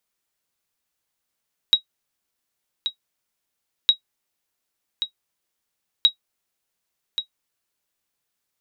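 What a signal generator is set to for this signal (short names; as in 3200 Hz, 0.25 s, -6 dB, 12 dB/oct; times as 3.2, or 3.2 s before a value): sonar ping 3820 Hz, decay 0.10 s, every 2.16 s, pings 3, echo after 1.13 s, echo -10 dB -5 dBFS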